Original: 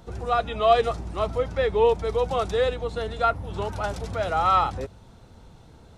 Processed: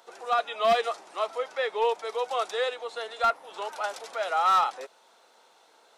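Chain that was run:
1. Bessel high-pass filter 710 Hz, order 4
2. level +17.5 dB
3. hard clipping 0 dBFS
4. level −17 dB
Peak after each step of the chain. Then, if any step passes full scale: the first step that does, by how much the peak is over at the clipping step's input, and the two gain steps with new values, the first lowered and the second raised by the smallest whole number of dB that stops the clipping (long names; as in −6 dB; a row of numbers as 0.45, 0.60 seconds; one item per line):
−9.5, +8.0, 0.0, −17.0 dBFS
step 2, 8.0 dB
step 2 +9.5 dB, step 4 −9 dB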